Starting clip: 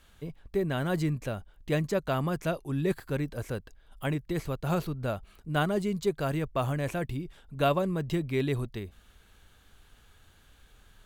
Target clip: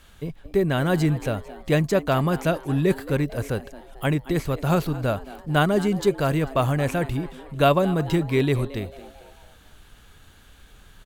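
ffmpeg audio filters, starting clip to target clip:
ffmpeg -i in.wav -filter_complex "[0:a]asplit=5[link_01][link_02][link_03][link_04][link_05];[link_02]adelay=222,afreqshift=130,volume=-17.5dB[link_06];[link_03]adelay=444,afreqshift=260,volume=-23.9dB[link_07];[link_04]adelay=666,afreqshift=390,volume=-30.3dB[link_08];[link_05]adelay=888,afreqshift=520,volume=-36.6dB[link_09];[link_01][link_06][link_07][link_08][link_09]amix=inputs=5:normalize=0,volume=7.5dB" out.wav

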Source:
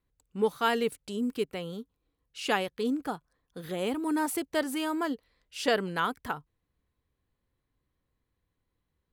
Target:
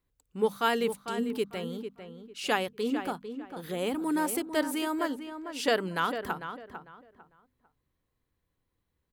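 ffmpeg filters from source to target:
ffmpeg -i in.wav -filter_complex "[0:a]highshelf=frequency=12000:gain=4,bandreject=frequency=50:width_type=h:width=6,bandreject=frequency=100:width_type=h:width=6,bandreject=frequency=150:width_type=h:width=6,bandreject=frequency=200:width_type=h:width=6,bandreject=frequency=250:width_type=h:width=6,asplit=2[link_01][link_02];[link_02]adelay=449,lowpass=frequency=2400:poles=1,volume=-9dB,asplit=2[link_03][link_04];[link_04]adelay=449,lowpass=frequency=2400:poles=1,volume=0.26,asplit=2[link_05][link_06];[link_06]adelay=449,lowpass=frequency=2400:poles=1,volume=0.26[link_07];[link_01][link_03][link_05][link_07]amix=inputs=4:normalize=0" out.wav

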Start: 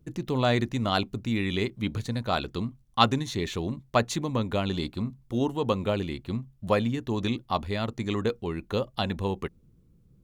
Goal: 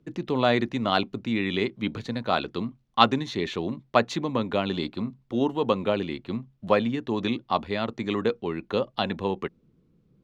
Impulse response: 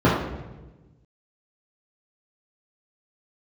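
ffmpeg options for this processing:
-filter_complex "[0:a]acrossover=split=160 5000:gain=0.2 1 0.112[link_01][link_02][link_03];[link_01][link_02][link_03]amix=inputs=3:normalize=0,volume=3dB"

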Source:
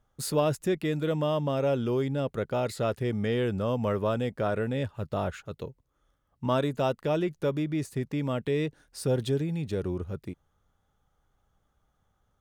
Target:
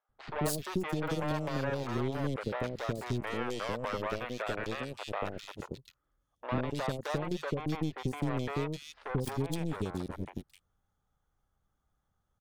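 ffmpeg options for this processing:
ffmpeg -i in.wav -filter_complex "[0:a]asettb=1/sr,asplit=3[link_01][link_02][link_03];[link_01]atrim=end=3.134[link_04];[link_02]atrim=start=3.13:end=5.38,asetpts=PTS-STARTPTS,afade=type=in:duration=0.004:curve=qsin,afade=type=out:start_time=2.246:duration=0.004:curve=qsin,highpass=280[link_05];[link_03]atrim=start=5.376[link_06];[link_04][link_05]acrossfade=duration=0.004:curve1=hsin:curve2=qsin[link_07];[link_07][link_06]acrossfade=duration=0.004:curve1=qsin:curve2=hsin,acompressor=threshold=-30dB:ratio=6,aeval=exprs='0.0841*(cos(1*acos(clip(val(0)/0.0841,-1,1)))-cos(1*PI/2))+0.00944*(cos(4*acos(clip(val(0)/0.0841,-1,1)))-cos(4*PI/2))+0.0168*(cos(7*acos(clip(val(0)/0.0841,-1,1)))-cos(7*PI/2))':channel_layout=same,acrossover=split=530|2900[link_08][link_09][link_10];[link_08]adelay=90[link_11];[link_10]adelay=260[link_12];[link_11][link_09][link_12]amix=inputs=3:normalize=0,volume=1.5dB" out.wav

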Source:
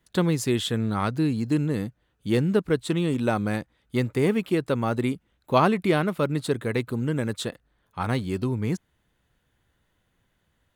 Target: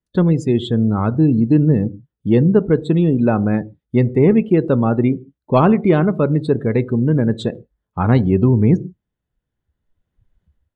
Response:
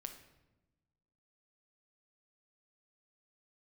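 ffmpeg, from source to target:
-filter_complex "[0:a]acontrast=71,tiltshelf=frequency=770:gain=5,dynaudnorm=framelen=580:gausssize=3:maxgain=14dB,asettb=1/sr,asplit=3[link_01][link_02][link_03];[link_01]atrim=end=0.704[link_04];[link_02]atrim=start=0.7:end=1.29,asetpts=PTS-STARTPTS,afade=type=in:duration=0.004:curve=qsin,afade=type=out:start_time=0.586:duration=0.004:curve=qsin,equalizer=frequency=5000:width=0.55:gain=-3.5[link_05];[link_03]atrim=start=1.286[link_06];[link_04][link_05]acrossfade=duration=0.004:curve1=hsin:curve2=qsin[link_07];[link_07][link_06]acrossfade=duration=0.004:curve1=qsin:curve2=hsin,asplit=2[link_08][link_09];[link_09]lowpass=10000[link_10];[1:a]atrim=start_sample=2205,afade=type=out:start_time=0.27:duration=0.01,atrim=end_sample=12348,asetrate=57330,aresample=44100[link_11];[link_10][link_11]afir=irnorm=-1:irlink=0,volume=2.5dB[link_12];[link_08][link_12]amix=inputs=2:normalize=0,afftdn=noise_reduction=23:noise_floor=-26,volume=-6.5dB"

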